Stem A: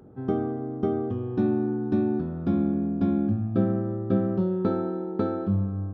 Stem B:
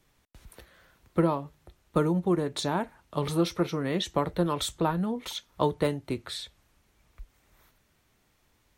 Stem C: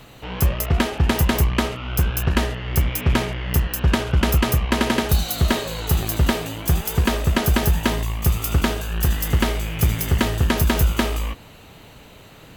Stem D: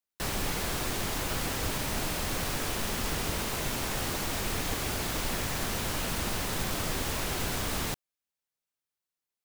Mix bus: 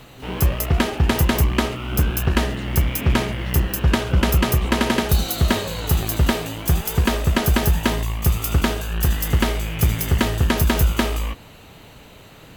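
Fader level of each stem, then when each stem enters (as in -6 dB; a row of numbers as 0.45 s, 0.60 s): -9.0 dB, -14.5 dB, +0.5 dB, -18.0 dB; 0.00 s, 0.00 s, 0.00 s, 0.00 s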